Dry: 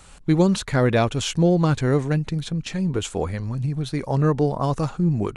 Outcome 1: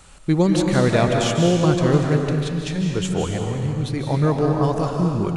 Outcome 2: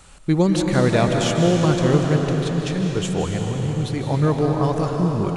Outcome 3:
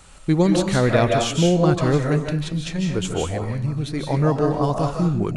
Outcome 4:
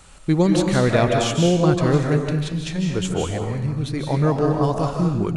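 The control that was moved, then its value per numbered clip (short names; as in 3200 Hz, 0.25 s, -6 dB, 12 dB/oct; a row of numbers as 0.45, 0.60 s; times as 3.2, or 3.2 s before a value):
digital reverb, RT60: 2.1, 4.5, 0.43, 0.91 s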